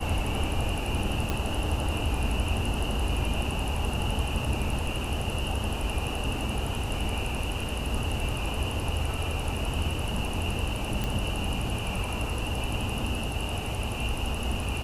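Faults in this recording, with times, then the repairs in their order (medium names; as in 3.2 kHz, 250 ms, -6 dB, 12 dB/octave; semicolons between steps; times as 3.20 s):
1.30 s: pop -14 dBFS
11.04 s: pop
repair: de-click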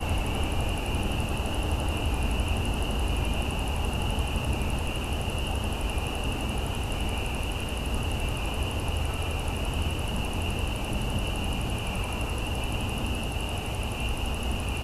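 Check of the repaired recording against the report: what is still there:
nothing left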